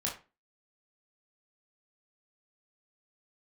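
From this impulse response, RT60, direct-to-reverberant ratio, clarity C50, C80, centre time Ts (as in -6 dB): 0.30 s, -3.5 dB, 8.5 dB, 14.5 dB, 26 ms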